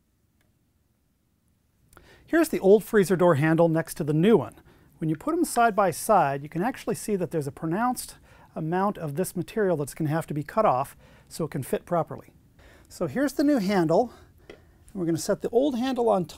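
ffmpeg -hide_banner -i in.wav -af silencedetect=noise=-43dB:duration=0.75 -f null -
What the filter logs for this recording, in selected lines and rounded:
silence_start: 0.00
silence_end: 1.93 | silence_duration: 1.93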